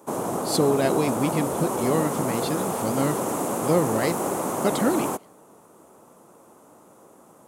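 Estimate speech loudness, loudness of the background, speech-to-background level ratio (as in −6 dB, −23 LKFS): −26.0 LKFS, −27.0 LKFS, 1.0 dB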